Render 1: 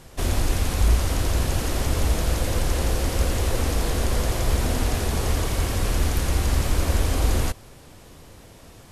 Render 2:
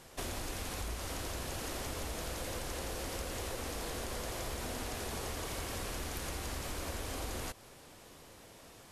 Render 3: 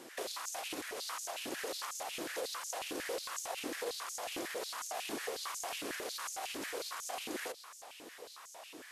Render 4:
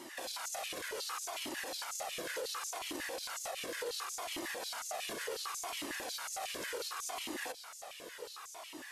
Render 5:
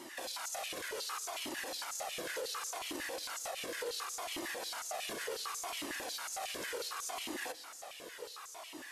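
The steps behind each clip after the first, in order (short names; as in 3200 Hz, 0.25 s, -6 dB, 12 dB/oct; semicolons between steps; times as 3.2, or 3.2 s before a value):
low shelf 190 Hz -11.5 dB; compressor, threshold -31 dBFS, peak gain reduction 9 dB; gain -5 dB
limiter -34 dBFS, peak gain reduction 8 dB; stepped high-pass 11 Hz 300–6500 Hz; gain +1.5 dB
limiter -34.5 dBFS, peak gain reduction 8.5 dB; cascading flanger falling 0.69 Hz; gain +7.5 dB
reverb RT60 1.8 s, pre-delay 42 ms, DRR 20 dB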